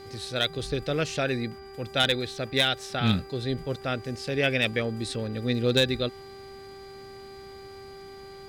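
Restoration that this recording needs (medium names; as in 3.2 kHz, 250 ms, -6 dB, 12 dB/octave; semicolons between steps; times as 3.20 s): clip repair -13.5 dBFS; de-hum 391.6 Hz, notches 6; band-stop 4.8 kHz, Q 30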